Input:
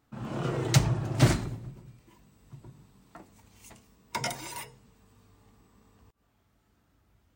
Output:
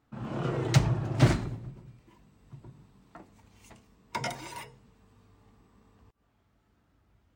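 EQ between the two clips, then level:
high-shelf EQ 6,100 Hz −11 dB
0.0 dB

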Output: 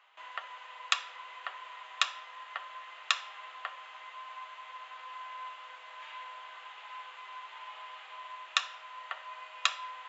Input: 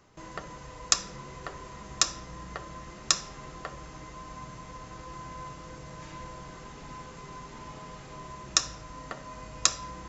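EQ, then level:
high-pass filter 790 Hz 24 dB per octave
high shelf with overshoot 4,200 Hz −10.5 dB, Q 3
0.0 dB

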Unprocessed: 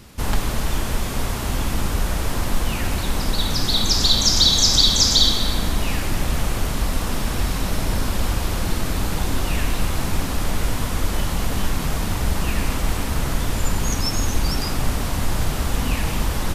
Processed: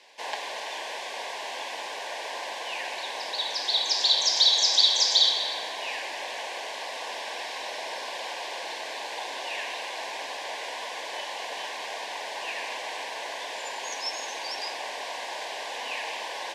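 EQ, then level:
high-pass filter 560 Hz 24 dB per octave
Butterworth band-reject 1,300 Hz, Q 2.5
low-pass filter 4,500 Hz 12 dB per octave
−1.5 dB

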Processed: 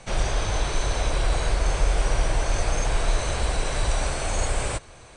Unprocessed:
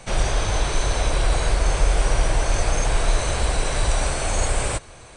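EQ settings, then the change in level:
low-pass filter 9,200 Hz 12 dB per octave
−3.0 dB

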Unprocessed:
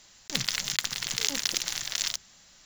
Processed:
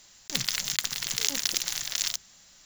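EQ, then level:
high-shelf EQ 8,500 Hz +9 dB
−1.5 dB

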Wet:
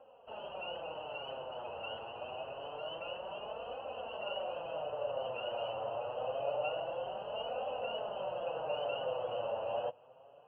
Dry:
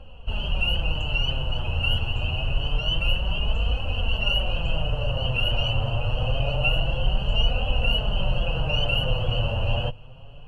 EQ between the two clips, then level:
four-pole ladder band-pass 730 Hz, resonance 30%
high-frequency loss of the air 98 metres
+6.5 dB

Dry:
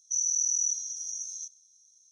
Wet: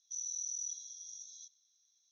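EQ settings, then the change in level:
low-pass filter 3,700 Hz 24 dB per octave
high-frequency loss of the air 160 metres
first difference
+17.0 dB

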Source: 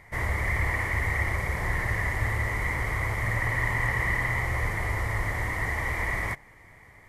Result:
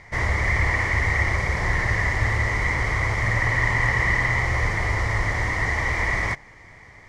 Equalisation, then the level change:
low-pass with resonance 5,700 Hz, resonance Q 1.9
+5.0 dB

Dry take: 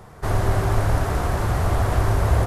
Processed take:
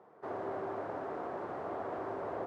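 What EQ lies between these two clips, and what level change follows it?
four-pole ladder band-pass 420 Hz, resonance 20%
spectral tilt +3.5 dB per octave
+4.5 dB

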